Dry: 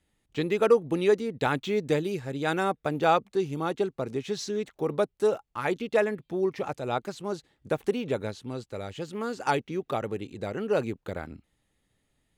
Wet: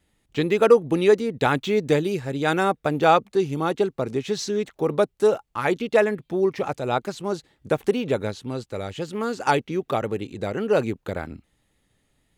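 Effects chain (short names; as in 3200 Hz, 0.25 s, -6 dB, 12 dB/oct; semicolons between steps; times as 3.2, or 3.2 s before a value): vibrato 1.9 Hz 19 cents; gain +5.5 dB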